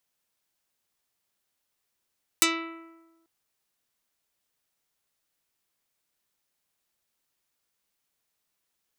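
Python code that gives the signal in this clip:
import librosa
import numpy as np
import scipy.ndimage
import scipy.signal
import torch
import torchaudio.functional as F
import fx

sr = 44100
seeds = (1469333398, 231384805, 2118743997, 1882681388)

y = fx.pluck(sr, length_s=0.84, note=64, decay_s=1.2, pick=0.4, brightness='dark')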